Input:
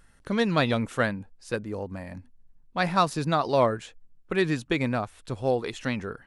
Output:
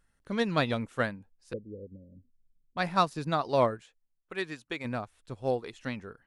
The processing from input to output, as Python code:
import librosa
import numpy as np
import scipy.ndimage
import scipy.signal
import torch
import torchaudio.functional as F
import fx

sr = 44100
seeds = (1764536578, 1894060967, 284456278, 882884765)

y = fx.steep_lowpass(x, sr, hz=550.0, slope=96, at=(1.53, 2.77))
y = fx.low_shelf(y, sr, hz=340.0, db=-11.5, at=(3.82, 4.84), fade=0.02)
y = fx.upward_expand(y, sr, threshold_db=-40.0, expansion=1.5)
y = y * librosa.db_to_amplitude(-2.0)